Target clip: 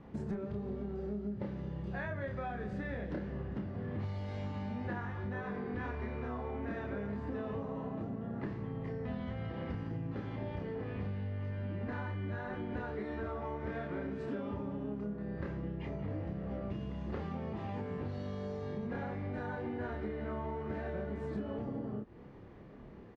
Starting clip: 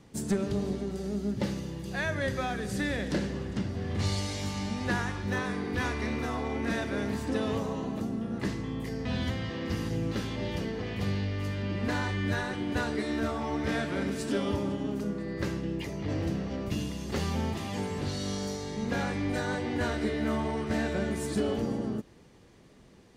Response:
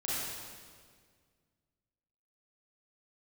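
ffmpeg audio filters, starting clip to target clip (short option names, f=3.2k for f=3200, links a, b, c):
-filter_complex "[0:a]lowpass=1.6k,asplit=2[a][b];[b]adelay=29,volume=-2.5dB[c];[a][c]amix=inputs=2:normalize=0,acompressor=threshold=-39dB:ratio=6,volume=2.5dB"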